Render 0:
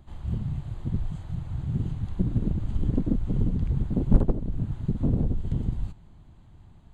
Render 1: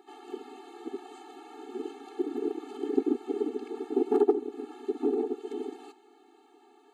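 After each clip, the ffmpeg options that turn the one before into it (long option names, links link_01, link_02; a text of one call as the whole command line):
ffmpeg -i in.wav -af "highpass=frequency=460:width_type=q:width=3.7,afftfilt=real='re*eq(mod(floor(b*sr/1024/230),2),1)':imag='im*eq(mod(floor(b*sr/1024/230),2),1)':win_size=1024:overlap=0.75,volume=6.5dB" out.wav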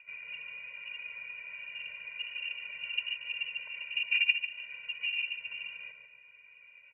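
ffmpeg -i in.wav -filter_complex "[0:a]highpass=frequency=670:width_type=q:width=4.9,lowpass=frequency=2700:width_type=q:width=0.5098,lowpass=frequency=2700:width_type=q:width=0.6013,lowpass=frequency=2700:width_type=q:width=0.9,lowpass=frequency=2700:width_type=q:width=2.563,afreqshift=-3200,asplit=2[link_01][link_02];[link_02]adelay=144,lowpass=frequency=1500:poles=1,volume=-4dB,asplit=2[link_03][link_04];[link_04]adelay=144,lowpass=frequency=1500:poles=1,volume=0.48,asplit=2[link_05][link_06];[link_06]adelay=144,lowpass=frequency=1500:poles=1,volume=0.48,asplit=2[link_07][link_08];[link_08]adelay=144,lowpass=frequency=1500:poles=1,volume=0.48,asplit=2[link_09][link_10];[link_10]adelay=144,lowpass=frequency=1500:poles=1,volume=0.48,asplit=2[link_11][link_12];[link_12]adelay=144,lowpass=frequency=1500:poles=1,volume=0.48[link_13];[link_01][link_03][link_05][link_07][link_09][link_11][link_13]amix=inputs=7:normalize=0,volume=-2.5dB" out.wav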